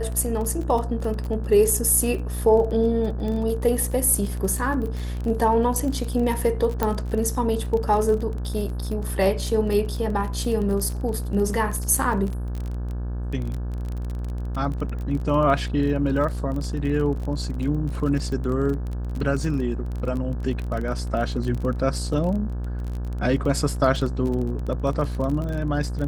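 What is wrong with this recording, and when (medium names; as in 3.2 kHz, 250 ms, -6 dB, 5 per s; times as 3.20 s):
buzz 60 Hz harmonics 29 -28 dBFS
crackle 28 per s -28 dBFS
6.83 s: pop -9 dBFS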